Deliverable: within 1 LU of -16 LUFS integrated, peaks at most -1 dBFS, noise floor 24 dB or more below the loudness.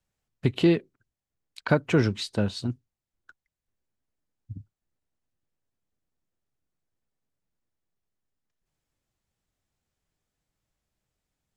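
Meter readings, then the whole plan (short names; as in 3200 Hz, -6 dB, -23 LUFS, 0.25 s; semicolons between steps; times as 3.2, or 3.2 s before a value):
loudness -26.0 LUFS; peak -7.0 dBFS; loudness target -16.0 LUFS
-> gain +10 dB; limiter -1 dBFS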